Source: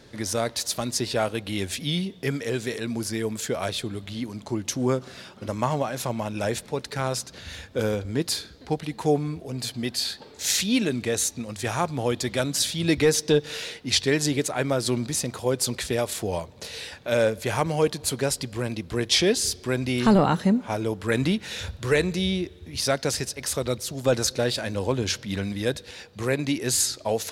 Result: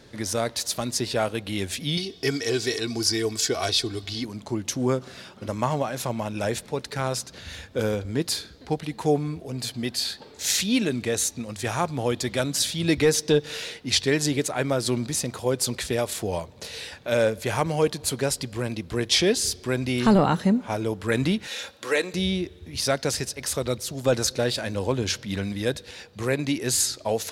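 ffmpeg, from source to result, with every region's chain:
ffmpeg -i in.wav -filter_complex "[0:a]asettb=1/sr,asplit=3[link_01][link_02][link_03];[link_01]atrim=end=1.974[link_04];[link_02]atrim=start=1.97:end=4.25,asetpts=PTS-STARTPTS,afade=type=in:duration=0.004:curve=qsin,afade=type=out:start_time=2.276:duration=0.004:curve=qsin,equalizer=frequency=5000:width=1.8:gain=13.5,aecho=1:1:2.7:0.62,atrim=end_sample=100548[link_05];[link_03]atrim=start=4.246[link_06];[link_04][link_05]acrossfade=duration=0.004:curve1=hsin:curve2=qsin[link_07];[link_07][link_06]acrossfade=duration=0.004:curve1=qsin:curve2=hsin,asettb=1/sr,asplit=3[link_08][link_09][link_10];[link_08]atrim=end=21.474[link_11];[link_09]atrim=start=21.47:end=22.14,asetpts=PTS-STARTPTS,afade=type=in:duration=0.004:curve=qsin,afade=type=out:start_time=0.666:duration=0.004:curve=qsin,highpass=390,aecho=1:1:3.7:0.39,atrim=end_sample=29547[link_12];[link_10]atrim=start=22.136[link_13];[link_11][link_12]acrossfade=duration=0.004:curve1=hsin:curve2=qsin[link_14];[link_14][link_13]acrossfade=duration=0.004:curve1=qsin:curve2=hsin" out.wav

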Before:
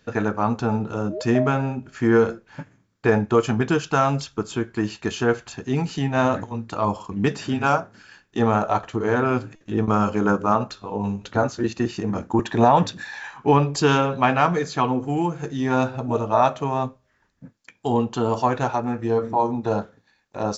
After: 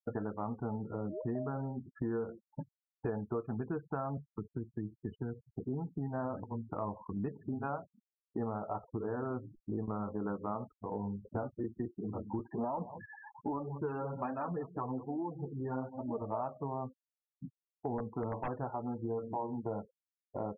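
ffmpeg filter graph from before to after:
ffmpeg -i in.wav -filter_complex "[0:a]asettb=1/sr,asplit=3[link_01][link_02][link_03];[link_01]atrim=end=4.174[link_04];[link_02]atrim=start=4.17:end=5.53,asetpts=PTS-STARTPTS,afade=type=in:duration=0.004:curve=qsin,afade=type=out:start_time=1.356:duration=0.004:curve=qsin,equalizer=frequency=460:width=0.57:gain=-5,acrossover=split=280|3000[link_05][link_06][link_07];[link_06]acompressor=threshold=-32dB:ratio=8:attack=3.2:release=140:knee=2.83:detection=peak[link_08];[link_05][link_08][link_07]amix=inputs=3:normalize=0[link_09];[link_03]atrim=start=5.526[link_10];[link_04][link_09]acrossfade=duration=0.004:curve1=hsin:curve2=qsin[link_11];[link_11][link_10]acrossfade=duration=0.004:curve1=qsin:curve2=hsin,asettb=1/sr,asplit=3[link_12][link_13][link_14];[link_12]atrim=end=11.884[link_15];[link_13]atrim=start=11.88:end=16.22,asetpts=PTS-STARTPTS,afade=type=in:duration=0.004:curve=qsin,afade=type=out:start_time=4.336:duration=0.004:curve=qsin,aecho=1:1:189:0.133,atrim=end_sample=191394,flanger=delay=3.1:depth=6.8:regen=-6:speed=1.2:shape=sinusoidal[link_16];[link_14]atrim=start=16.216[link_17];[link_15][link_16]acrossfade=duration=0.004:curve1=hsin:curve2=qsin[link_18];[link_18][link_17]acrossfade=duration=0.004:curve1=qsin:curve2=hsin,asettb=1/sr,asplit=3[link_19][link_20][link_21];[link_19]atrim=end=17.984[link_22];[link_20]atrim=start=17.98:end=18.48,asetpts=PTS-STARTPTS,afade=type=in:duration=0.004:curve=qsin,afade=type=out:start_time=0.496:duration=0.004:curve=qsin,asplit=2[link_23][link_24];[link_24]adelay=19,volume=-7dB[link_25];[link_23][link_25]amix=inputs=2:normalize=0,atrim=end_sample=22050,aeval=exprs='(mod(3.98*val(0)+1,2)-1)/3.98':channel_layout=same[link_26];[link_21]atrim=start=18.476[link_27];[link_22][link_26]acrossfade=duration=0.004:curve1=hsin:curve2=qsin[link_28];[link_28][link_27]acrossfade=duration=0.004:curve1=qsin:curve2=hsin,lowpass=1100,afftfilt=real='re*gte(hypot(re,im),0.0251)':imag='im*gte(hypot(re,im),0.0251)':win_size=1024:overlap=0.75,acompressor=threshold=-34dB:ratio=4,volume=-2.5dB" out.wav

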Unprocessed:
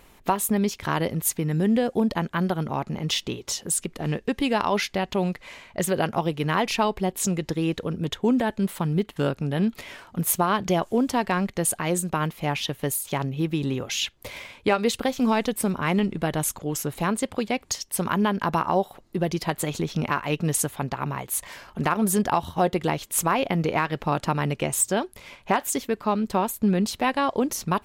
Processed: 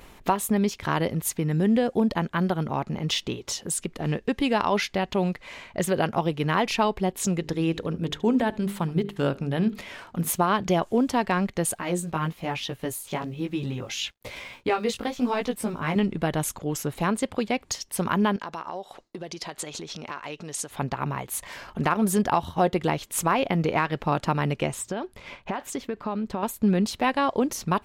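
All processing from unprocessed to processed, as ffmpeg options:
ffmpeg -i in.wav -filter_complex "[0:a]asettb=1/sr,asplit=3[link_01][link_02][link_03];[link_01]atrim=end=7.404[link_04];[link_02]atrim=start=7.4:end=10.3,asetpts=PTS-STARTPTS,afade=type=in:duration=0.004:curve=qsin,afade=type=out:start_time=2.896:duration=0.004:curve=qsin,bandreject=frequency=50:width_type=h:width=6,bandreject=frequency=100:width_type=h:width=6,bandreject=frequency=150:width_type=h:width=6,bandreject=frequency=200:width_type=h:width=6,bandreject=frequency=250:width_type=h:width=6,bandreject=frequency=300:width_type=h:width=6,bandreject=frequency=350:width_type=h:width=6,bandreject=frequency=400:width_type=h:width=6,bandreject=frequency=450:width_type=h:width=6,aecho=1:1:74:0.075,atrim=end_sample=127890[link_05];[link_03]atrim=start=10.296[link_06];[link_04][link_05]acrossfade=duration=0.004:curve1=hsin:curve2=qsin[link_07];[link_07][link_06]acrossfade=duration=0.004:curve1=qsin:curve2=hsin,asettb=1/sr,asplit=3[link_08][link_09][link_10];[link_08]atrim=end=11.754[link_11];[link_09]atrim=start=11.75:end=15.96,asetpts=PTS-STARTPTS,afade=type=in:duration=0.004:curve=qsin,afade=type=out:start_time=4.206:duration=0.004:curve=qsin,acrusher=bits=8:mix=0:aa=0.5,flanger=delay=15.5:depth=3.3:speed=1.1[link_12];[link_10]atrim=start=15.956[link_13];[link_11][link_12]acrossfade=duration=0.004:curve1=hsin:curve2=qsin[link_14];[link_14][link_13]acrossfade=duration=0.004:curve1=qsin:curve2=hsin,asettb=1/sr,asplit=3[link_15][link_16][link_17];[link_15]atrim=end=18.364[link_18];[link_16]atrim=start=18.36:end=20.71,asetpts=PTS-STARTPTS,afade=type=in:duration=0.004:curve=qsin,afade=type=out:start_time=2.346:duration=0.004:curve=qsin,lowpass=6600,acompressor=threshold=-33dB:ratio=3:attack=3.2:release=140:knee=1:detection=peak,bass=frequency=250:gain=-10,treble=frequency=4000:gain=9[link_19];[link_17]atrim=start=20.706[link_20];[link_18][link_19]acrossfade=duration=0.004:curve1=hsin:curve2=qsin[link_21];[link_21][link_20]acrossfade=duration=0.004:curve1=qsin:curve2=hsin,asettb=1/sr,asplit=3[link_22][link_23][link_24];[link_22]atrim=end=24.724[link_25];[link_23]atrim=start=24.72:end=26.43,asetpts=PTS-STARTPTS,afade=type=in:duration=0.004:curve=qsin,afade=type=out:start_time=1.706:duration=0.004:curve=qsin,lowpass=frequency=3700:poles=1,acompressor=threshold=-24dB:ratio=10:attack=3.2:release=140:knee=1:detection=peak[link_26];[link_24]atrim=start=26.426[link_27];[link_25][link_26]acrossfade=duration=0.004:curve1=hsin:curve2=qsin[link_28];[link_28][link_27]acrossfade=duration=0.004:curve1=qsin:curve2=hsin,agate=range=-33dB:threshold=-43dB:ratio=3:detection=peak,highshelf=frequency=8600:gain=-7,acompressor=mode=upward:threshold=-32dB:ratio=2.5" out.wav

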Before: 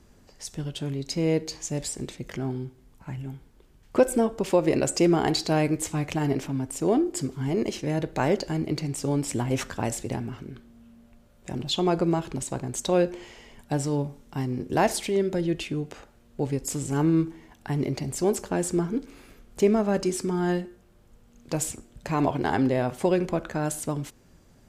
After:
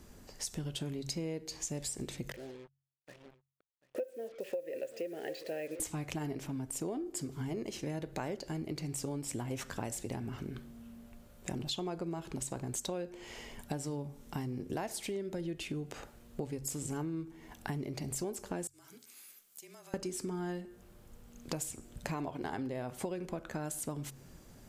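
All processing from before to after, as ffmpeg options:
ffmpeg -i in.wav -filter_complex "[0:a]asettb=1/sr,asplit=3[link_01][link_02][link_03];[link_01]atrim=end=2.324[link_04];[link_02]atrim=start=2.32:end=5.8,asetpts=PTS-STARTPTS,afade=type=in:duration=0.004:curve=qsin,afade=type=out:start_time=3.476:duration=0.004:curve=qsin,asplit=3[link_05][link_06][link_07];[link_05]bandpass=frequency=530:width_type=q:width=8,volume=0dB[link_08];[link_06]bandpass=frequency=1840:width_type=q:width=8,volume=-6dB[link_09];[link_07]bandpass=frequency=2480:width_type=q:width=8,volume=-9dB[link_10];[link_08][link_09][link_10]amix=inputs=3:normalize=0,acrusher=bits=8:mix=0:aa=0.5,aecho=1:1:738:0.112,atrim=end_sample=153468[link_11];[link_03]atrim=start=5.796[link_12];[link_04][link_11]acrossfade=duration=0.004:curve1=hsin:curve2=qsin[link_13];[link_13][link_12]acrossfade=duration=0.004:curve1=qsin:curve2=hsin,asettb=1/sr,asplit=3[link_14][link_15][link_16];[link_14]atrim=end=18.674[link_17];[link_15]atrim=start=18.67:end=19.94,asetpts=PTS-STARTPTS,afade=type=in:duration=0.004:curve=qsin,afade=type=out:start_time=1.266:duration=0.004:curve=qsin,aderivative,afreqshift=-32,acompressor=threshold=-52dB:ratio=6:attack=3.2:release=140:knee=1:detection=peak[link_18];[link_16]atrim=start=19.936[link_19];[link_17][link_18]acrossfade=duration=0.004:curve1=hsin:curve2=qsin[link_20];[link_20][link_19]acrossfade=duration=0.004:curve1=qsin:curve2=hsin,highshelf=frequency=10000:gain=9,bandreject=frequency=45.75:width_type=h:width=4,bandreject=frequency=91.5:width_type=h:width=4,bandreject=frequency=137.25:width_type=h:width=4,acompressor=threshold=-36dB:ratio=10,volume=1dB" out.wav

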